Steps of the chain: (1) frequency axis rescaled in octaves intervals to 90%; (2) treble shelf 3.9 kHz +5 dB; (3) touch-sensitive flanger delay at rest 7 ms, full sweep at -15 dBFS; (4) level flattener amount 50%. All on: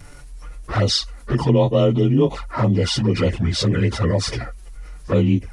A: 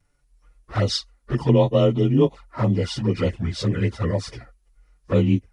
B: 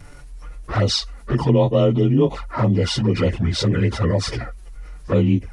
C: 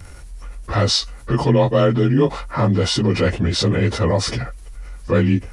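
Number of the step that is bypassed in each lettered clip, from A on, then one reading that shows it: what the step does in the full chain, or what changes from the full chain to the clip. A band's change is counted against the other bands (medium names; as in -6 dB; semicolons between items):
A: 4, crest factor change +2.5 dB; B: 2, 8 kHz band -2.0 dB; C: 3, 2 kHz band +2.0 dB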